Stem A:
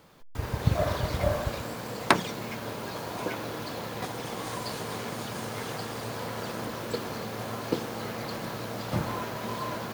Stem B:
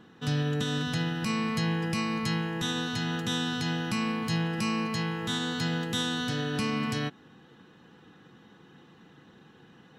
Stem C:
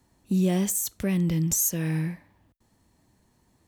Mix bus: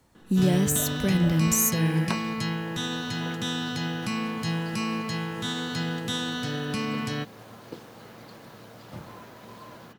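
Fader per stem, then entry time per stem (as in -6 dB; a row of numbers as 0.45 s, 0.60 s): -12.0 dB, 0.0 dB, +1.0 dB; 0.00 s, 0.15 s, 0.00 s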